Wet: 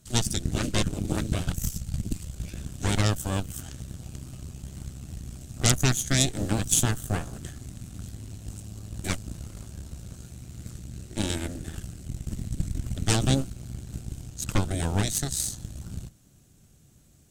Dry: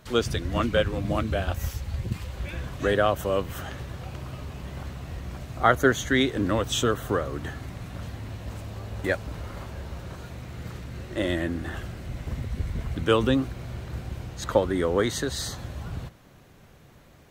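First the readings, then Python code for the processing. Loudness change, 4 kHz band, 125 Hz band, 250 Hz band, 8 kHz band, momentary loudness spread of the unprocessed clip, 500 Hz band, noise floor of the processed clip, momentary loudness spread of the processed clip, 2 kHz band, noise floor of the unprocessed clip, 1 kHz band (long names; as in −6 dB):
−0.5 dB, +1.0 dB, +2.0 dB, −2.5 dB, +10.0 dB, 15 LU, −10.5 dB, −57 dBFS, 18 LU, −6.0 dB, −53 dBFS, −7.5 dB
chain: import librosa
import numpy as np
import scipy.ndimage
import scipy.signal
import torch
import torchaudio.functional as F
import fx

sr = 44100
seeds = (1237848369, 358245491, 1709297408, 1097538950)

y = fx.cheby_harmonics(x, sr, harmonics=(8,), levels_db=(-6,), full_scale_db=-3.5)
y = fx.graphic_eq(y, sr, hz=(500, 1000, 2000, 4000, 8000), db=(-9, -12, -10, -4, 11))
y = y * 10.0 ** (-3.0 / 20.0)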